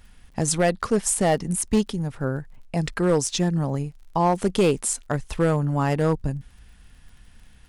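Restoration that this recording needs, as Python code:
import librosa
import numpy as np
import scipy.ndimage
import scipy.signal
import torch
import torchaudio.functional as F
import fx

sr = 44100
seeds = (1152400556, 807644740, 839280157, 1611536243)

y = fx.fix_declip(x, sr, threshold_db=-13.0)
y = fx.fix_declick_ar(y, sr, threshold=6.5)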